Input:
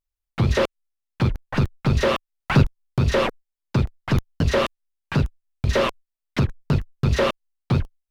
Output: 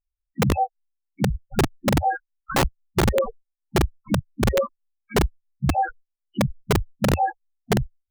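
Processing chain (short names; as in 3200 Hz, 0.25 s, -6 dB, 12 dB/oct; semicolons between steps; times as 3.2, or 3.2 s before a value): trilling pitch shifter +6 st, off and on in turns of 0.368 s; loudest bins only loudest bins 4; wrapped overs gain 15 dB; gain +2 dB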